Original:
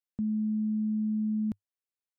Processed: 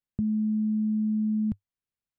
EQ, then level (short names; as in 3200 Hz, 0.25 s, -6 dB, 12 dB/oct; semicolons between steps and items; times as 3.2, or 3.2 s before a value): tone controls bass +12 dB, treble -7 dB; dynamic EQ 300 Hz, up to -7 dB, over -39 dBFS, Q 1.1; 0.0 dB